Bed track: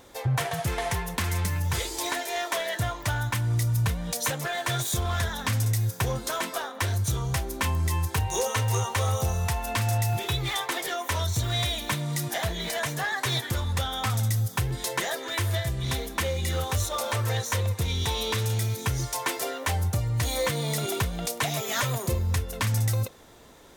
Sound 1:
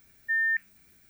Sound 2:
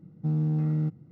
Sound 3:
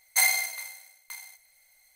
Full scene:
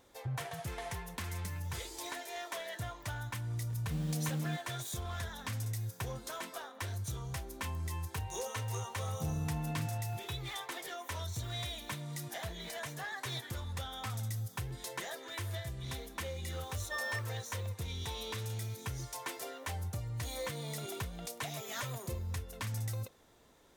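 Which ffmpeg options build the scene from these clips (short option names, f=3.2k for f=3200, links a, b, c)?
-filter_complex "[2:a]asplit=2[a][b];[0:a]volume=-12.5dB[c];[a]acrusher=bits=6:mix=0:aa=0.000001[d];[b]acompressor=threshold=-28dB:ratio=6:attack=3.2:release=140:knee=1:detection=peak[e];[1:a]asoftclip=type=hard:threshold=-28dB[f];[d]atrim=end=1.11,asetpts=PTS-STARTPTS,volume=-10dB,afade=t=in:d=0.004:c=hsin,afade=t=out:st=1.106:d=0.004:c=hsin,adelay=3670[g];[e]atrim=end=1.11,asetpts=PTS-STARTPTS,volume=-7dB,afade=t=in:d=0.004:c=hsin,afade=t=out:st=1.106:d=0.004:c=hsin,adelay=8970[h];[f]atrim=end=1.09,asetpts=PTS-STARTPTS,volume=-9.5dB,afade=t=in:d=0.004:c=hsin,afade=t=out:st=1.086:d=0.004:c=hsin,adelay=16620[i];[c][g][h][i]amix=inputs=4:normalize=0"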